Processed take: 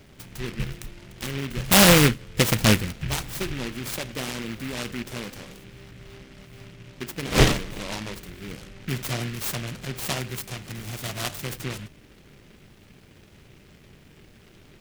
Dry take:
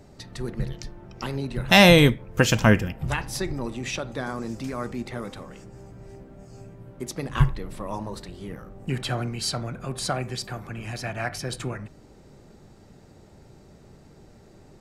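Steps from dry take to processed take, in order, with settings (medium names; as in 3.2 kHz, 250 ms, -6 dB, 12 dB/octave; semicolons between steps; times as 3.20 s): 7.24–7.79 s: wind noise 570 Hz -24 dBFS; delay time shaken by noise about 2.1 kHz, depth 0.25 ms; trim -1 dB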